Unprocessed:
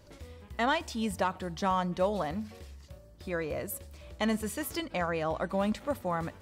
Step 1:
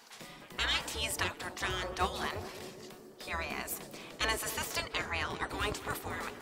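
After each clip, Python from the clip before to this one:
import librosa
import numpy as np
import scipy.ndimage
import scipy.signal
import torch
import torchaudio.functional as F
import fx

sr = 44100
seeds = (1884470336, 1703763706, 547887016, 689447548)

y = fx.spec_gate(x, sr, threshold_db=-15, keep='weak')
y = fx.echo_banded(y, sr, ms=211, feedback_pct=77, hz=310.0, wet_db=-7.0)
y = y * librosa.db_to_amplitude(8.5)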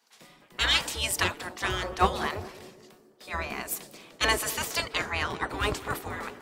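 y = fx.band_widen(x, sr, depth_pct=70)
y = y * librosa.db_to_amplitude(5.5)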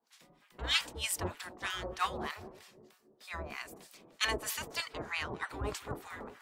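y = fx.harmonic_tremolo(x, sr, hz=3.2, depth_pct=100, crossover_hz=960.0)
y = y * librosa.db_to_amplitude(-3.5)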